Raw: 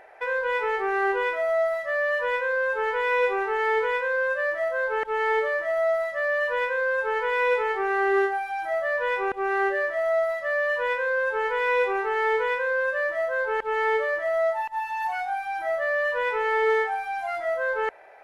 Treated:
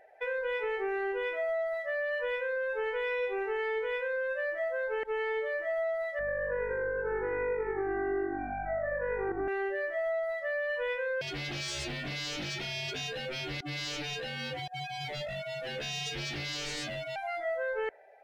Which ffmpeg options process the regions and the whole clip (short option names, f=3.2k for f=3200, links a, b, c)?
-filter_complex "[0:a]asettb=1/sr,asplit=3[a][b][c];[a]atrim=end=6.194[d];[b]atrim=start=6.19:end=9.48,asetpts=PTS-STARTPTS,afade=t=in:d=0.004:c=qsin,afade=t=out:st=3.286:d=0.004:c=qsin,lowpass=f=1.8k:w=0.5412,lowpass=f=1.8k:w=1.3066,aeval=exprs='val(0)+0.00631*(sin(2*PI*50*n/s)+sin(2*PI*2*50*n/s)/2+sin(2*PI*3*50*n/s)/3+sin(2*PI*4*50*n/s)/4+sin(2*PI*5*50*n/s)/5)':c=same,asplit=6[e][f][g][h][i][j];[f]adelay=85,afreqshift=-48,volume=-7dB[k];[g]adelay=170,afreqshift=-96,volume=-14.5dB[l];[h]adelay=255,afreqshift=-144,volume=-22.1dB[m];[i]adelay=340,afreqshift=-192,volume=-29.6dB[n];[j]adelay=425,afreqshift=-240,volume=-37.1dB[o];[e][k][l][m][n][o]amix=inputs=6:normalize=0,atrim=end_sample=145089[p];[c]atrim=start=9.476[q];[d][p]acrossfade=d=0.004:c1=hsin:c2=qsin[r];[r][q]acrossfade=d=0.004:c1=qsin:c2=hsin,asettb=1/sr,asplit=3[s][t][u];[s]atrim=end=11.214[v];[t]atrim=start=11.21:end=17.16,asetpts=PTS-STARTPTS,afade=t=in:d=0.004:c=qsin,afade=t=out:st=5.946:d=0.004:c=qsin,highpass=430,afreqshift=-140,aeval=exprs='0.0355*(abs(mod(val(0)/0.0355+3,4)-2)-1)':c=same[w];[u]atrim=start=17.156[x];[v][w]acrossfade=d=0.004:c1=hsin:c2=qsin[y];[y][x]acrossfade=d=0.004:c1=qsin:c2=hsin,afftdn=nr=12:nf=-45,equalizer=f=1.1k:t=o:w=1.1:g=-13,acompressor=threshold=-29dB:ratio=6"